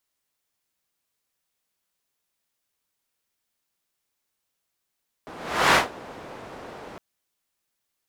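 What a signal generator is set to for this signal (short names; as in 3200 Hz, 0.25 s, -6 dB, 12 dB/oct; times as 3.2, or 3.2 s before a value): whoosh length 1.71 s, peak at 0.48, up 0.45 s, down 0.17 s, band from 610 Hz, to 1300 Hz, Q 0.81, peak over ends 24 dB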